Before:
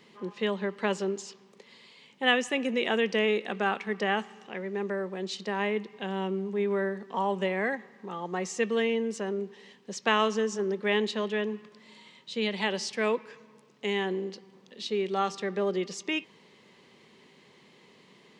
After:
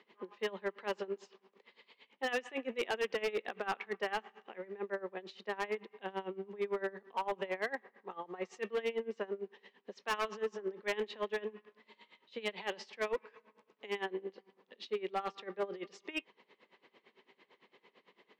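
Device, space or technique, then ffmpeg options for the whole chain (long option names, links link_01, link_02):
helicopter radio: -af "highpass=370,lowpass=2900,aeval=exprs='val(0)*pow(10,-21*(0.5-0.5*cos(2*PI*8.9*n/s))/20)':channel_layout=same,asoftclip=type=hard:threshold=-28.5dB"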